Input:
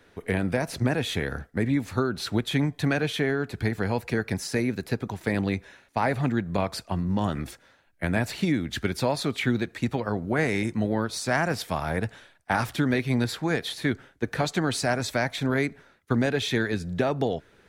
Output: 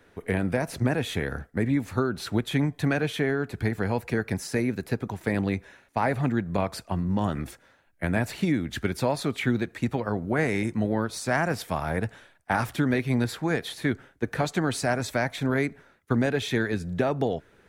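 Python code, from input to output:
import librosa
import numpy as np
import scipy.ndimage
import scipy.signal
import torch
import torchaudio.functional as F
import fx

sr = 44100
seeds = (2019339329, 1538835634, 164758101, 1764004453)

y = fx.peak_eq(x, sr, hz=4300.0, db=-4.5, octaves=1.3)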